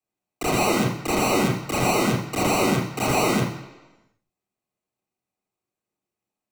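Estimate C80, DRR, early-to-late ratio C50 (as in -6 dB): 8.0 dB, -2.0 dB, 5.0 dB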